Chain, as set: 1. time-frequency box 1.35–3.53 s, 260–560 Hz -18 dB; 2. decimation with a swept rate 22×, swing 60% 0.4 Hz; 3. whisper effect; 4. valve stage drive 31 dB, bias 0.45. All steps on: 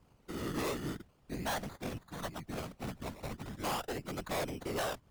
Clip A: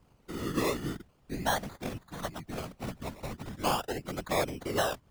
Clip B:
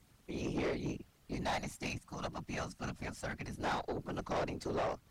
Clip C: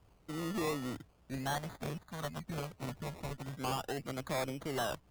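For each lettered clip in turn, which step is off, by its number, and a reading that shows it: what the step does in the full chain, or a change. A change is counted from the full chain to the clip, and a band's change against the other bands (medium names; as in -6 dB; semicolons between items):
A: 4, crest factor change +9.0 dB; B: 2, 8 kHz band -4.5 dB; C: 3, 125 Hz band +2.5 dB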